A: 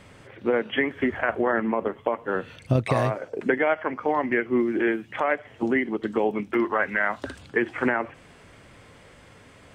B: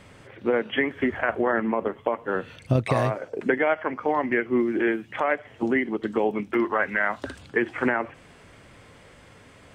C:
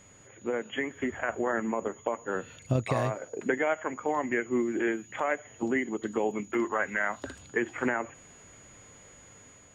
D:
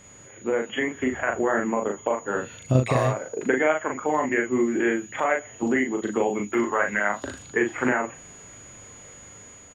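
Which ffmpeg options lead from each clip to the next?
-af anull
-af "aeval=exprs='val(0)+0.00398*sin(2*PI*6800*n/s)':c=same,dynaudnorm=f=790:g=3:m=3.5dB,volume=-8.5dB"
-filter_complex "[0:a]asplit=2[a][b];[b]adelay=39,volume=-4dB[c];[a][c]amix=inputs=2:normalize=0,volume=4.5dB"

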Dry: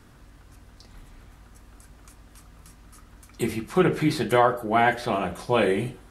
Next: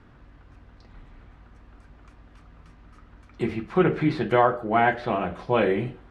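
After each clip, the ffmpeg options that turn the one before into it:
-af "lowpass=2.7k"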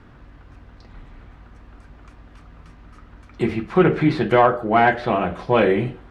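-af "asoftclip=type=tanh:threshold=-7.5dB,volume=5.5dB"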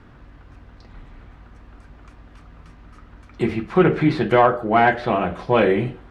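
-af anull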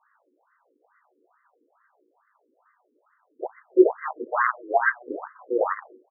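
-af "aecho=1:1:19|78:0.562|0.188,aeval=exprs='0.794*(cos(1*acos(clip(val(0)/0.794,-1,1)))-cos(1*PI/2))+0.224*(cos(2*acos(clip(val(0)/0.794,-1,1)))-cos(2*PI/2))+0.0562*(cos(3*acos(clip(val(0)/0.794,-1,1)))-cos(3*PI/2))+0.126*(cos(7*acos(clip(val(0)/0.794,-1,1)))-cos(7*PI/2))':c=same,afftfilt=real='re*between(b*sr/1024,360*pow(1500/360,0.5+0.5*sin(2*PI*2.3*pts/sr))/1.41,360*pow(1500/360,0.5+0.5*sin(2*PI*2.3*pts/sr))*1.41)':imag='im*between(b*sr/1024,360*pow(1500/360,0.5+0.5*sin(2*PI*2.3*pts/sr))/1.41,360*pow(1500/360,0.5+0.5*sin(2*PI*2.3*pts/sr))*1.41)':win_size=1024:overlap=0.75"

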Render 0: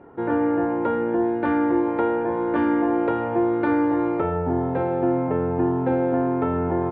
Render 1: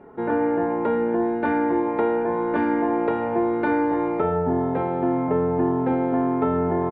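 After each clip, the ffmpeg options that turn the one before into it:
-af "aecho=1:1:4.7:0.46"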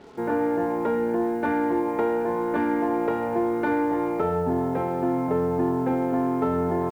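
-filter_complex "[0:a]asplit=2[a][b];[b]asoftclip=type=tanh:threshold=-26dB,volume=-12dB[c];[a][c]amix=inputs=2:normalize=0,acrusher=bits=7:mix=0:aa=0.5,volume=-3dB"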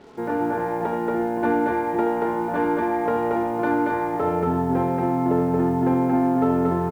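-af "aecho=1:1:75.8|230.3:0.355|0.794"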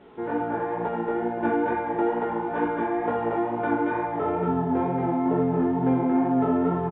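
-af "flanger=delay=15.5:depth=4.4:speed=2.2,aresample=8000,aresample=44100"

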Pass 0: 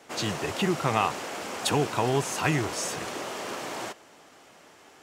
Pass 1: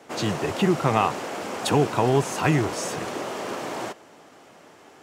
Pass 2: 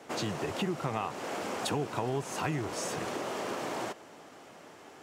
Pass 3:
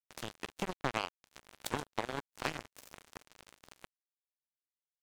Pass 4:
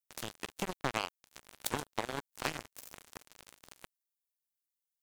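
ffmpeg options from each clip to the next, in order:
-af "highpass=79,tiltshelf=f=1.3k:g=3.5,volume=2.5dB"
-af "acompressor=threshold=-31dB:ratio=3,volume=-1.5dB"
-filter_complex "[0:a]asplit=7[a][b][c][d][e][f][g];[b]adelay=126,afreqshift=-39,volume=-16dB[h];[c]adelay=252,afreqshift=-78,volume=-20.3dB[i];[d]adelay=378,afreqshift=-117,volume=-24.6dB[j];[e]adelay=504,afreqshift=-156,volume=-28.9dB[k];[f]adelay=630,afreqshift=-195,volume=-33.2dB[l];[g]adelay=756,afreqshift=-234,volume=-37.5dB[m];[a][h][i][j][k][l][m]amix=inputs=7:normalize=0,acrusher=bits=3:mix=0:aa=0.5"
-af "crystalizer=i=1:c=0"

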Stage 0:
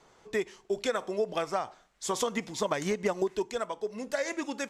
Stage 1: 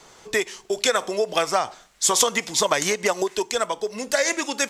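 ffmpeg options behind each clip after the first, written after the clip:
-filter_complex "[0:a]highshelf=f=2.8k:g=10,acrossover=split=400|4400[a][b][c];[a]acompressor=threshold=-42dB:ratio=6[d];[d][b][c]amix=inputs=3:normalize=0,volume=8.5dB"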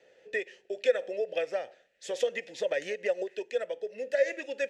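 -filter_complex "[0:a]asplit=3[a][b][c];[a]bandpass=f=530:t=q:w=8,volume=0dB[d];[b]bandpass=f=1.84k:t=q:w=8,volume=-6dB[e];[c]bandpass=f=2.48k:t=q:w=8,volume=-9dB[f];[d][e][f]amix=inputs=3:normalize=0,lowshelf=f=220:g=8"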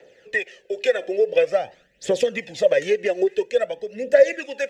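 -filter_complex "[0:a]acrossover=split=230[a][b];[a]dynaudnorm=f=430:g=5:m=13dB[c];[c][b]amix=inputs=2:normalize=0,aphaser=in_gain=1:out_gain=1:delay=3:decay=0.57:speed=0.48:type=triangular,volume=7dB"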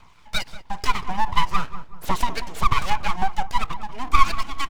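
-filter_complex "[0:a]aeval=exprs='abs(val(0))':c=same,asplit=2[a][b];[b]adelay=188,lowpass=f=990:p=1,volume=-10dB,asplit=2[c][d];[d]adelay=188,lowpass=f=990:p=1,volume=0.48,asplit=2[e][f];[f]adelay=188,lowpass=f=990:p=1,volume=0.48,asplit=2[g][h];[h]adelay=188,lowpass=f=990:p=1,volume=0.48,asplit=2[i][j];[j]adelay=188,lowpass=f=990:p=1,volume=0.48[k];[a][c][e][g][i][k]amix=inputs=6:normalize=0,volume=1.5dB"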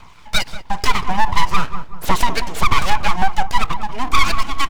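-af "aeval=exprs='0.891*sin(PI/2*2.24*val(0)/0.891)':c=same,volume=-2.5dB"

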